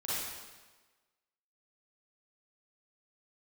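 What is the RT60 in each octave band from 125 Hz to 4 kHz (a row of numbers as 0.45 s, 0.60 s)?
1.2 s, 1.2 s, 1.3 s, 1.3 s, 1.2 s, 1.2 s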